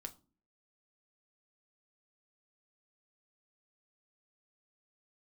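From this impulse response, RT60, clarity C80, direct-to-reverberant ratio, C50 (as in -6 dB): 0.35 s, 24.0 dB, 5.5 dB, 18.5 dB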